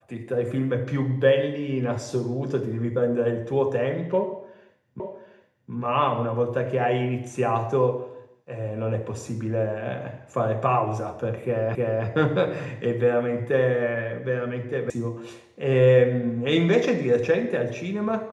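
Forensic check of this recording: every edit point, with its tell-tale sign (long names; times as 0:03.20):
0:05.00: the same again, the last 0.72 s
0:11.75: the same again, the last 0.31 s
0:14.90: cut off before it has died away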